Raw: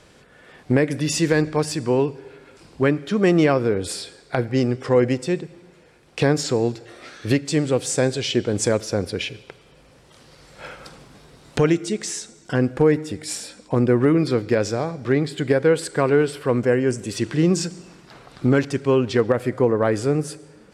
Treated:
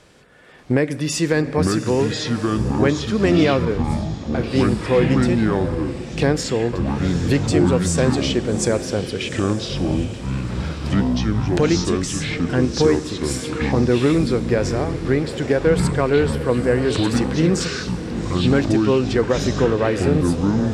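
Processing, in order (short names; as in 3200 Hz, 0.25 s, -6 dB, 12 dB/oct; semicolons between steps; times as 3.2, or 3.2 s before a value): diffused feedback echo 0.802 s, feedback 42%, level -11 dB; 3.65–4.44 expander -16 dBFS; echoes that change speed 0.586 s, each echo -6 st, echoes 3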